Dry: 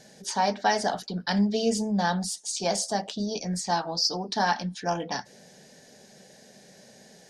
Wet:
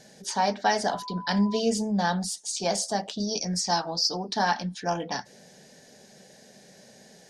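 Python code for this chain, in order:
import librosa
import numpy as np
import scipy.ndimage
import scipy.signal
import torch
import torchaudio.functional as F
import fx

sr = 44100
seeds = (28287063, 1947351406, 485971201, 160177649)

y = fx.dmg_tone(x, sr, hz=1000.0, level_db=-37.0, at=(0.89, 1.58), fade=0.02)
y = fx.peak_eq(y, sr, hz=5400.0, db=10.0, octaves=0.42, at=(3.2, 3.9))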